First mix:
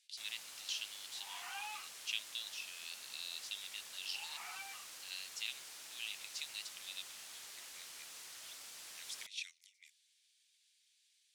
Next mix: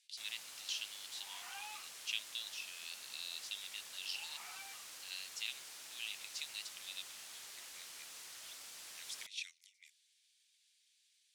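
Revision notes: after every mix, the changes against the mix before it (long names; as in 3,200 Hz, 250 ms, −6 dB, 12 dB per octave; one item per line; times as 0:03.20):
second sound −4.0 dB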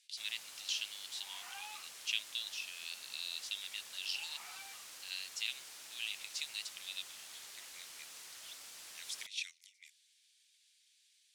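speech +3.5 dB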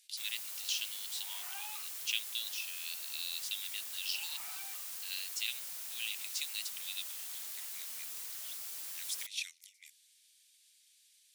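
master: remove high-frequency loss of the air 54 metres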